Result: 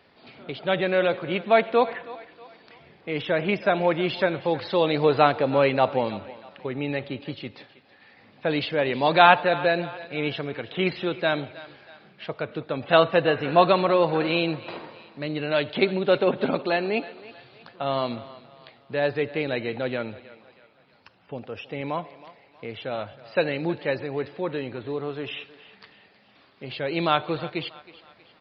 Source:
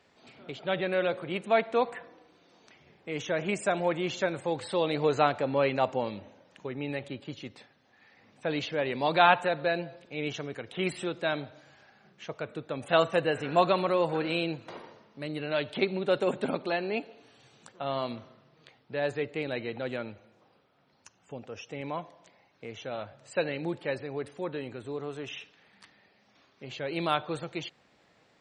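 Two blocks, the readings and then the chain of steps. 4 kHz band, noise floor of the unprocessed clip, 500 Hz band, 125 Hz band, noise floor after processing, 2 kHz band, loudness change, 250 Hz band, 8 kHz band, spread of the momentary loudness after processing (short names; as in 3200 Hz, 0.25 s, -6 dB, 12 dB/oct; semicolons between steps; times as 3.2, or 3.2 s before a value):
+6.0 dB, -66 dBFS, +6.0 dB, +6.0 dB, -58 dBFS, +6.0 dB, +6.0 dB, +6.0 dB, n/a, 18 LU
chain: thinning echo 0.319 s, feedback 46%, high-pass 420 Hz, level -17 dB; downsampling 11025 Hz; gain +6 dB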